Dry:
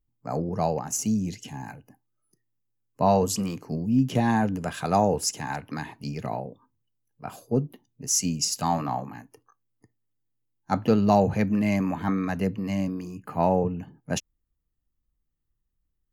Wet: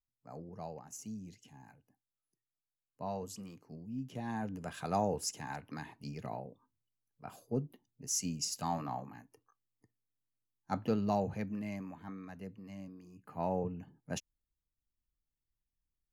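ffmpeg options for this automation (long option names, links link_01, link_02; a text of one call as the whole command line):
ffmpeg -i in.wav -af "volume=-1.5dB,afade=type=in:start_time=4.16:duration=0.65:silence=0.375837,afade=type=out:start_time=10.76:duration=1.22:silence=0.334965,afade=type=in:start_time=13.02:duration=0.61:silence=0.354813" out.wav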